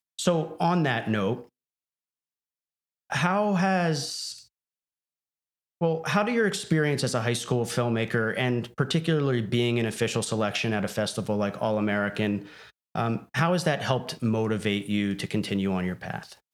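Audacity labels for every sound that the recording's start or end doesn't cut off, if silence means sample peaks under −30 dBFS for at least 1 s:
3.120000	4.320000	sound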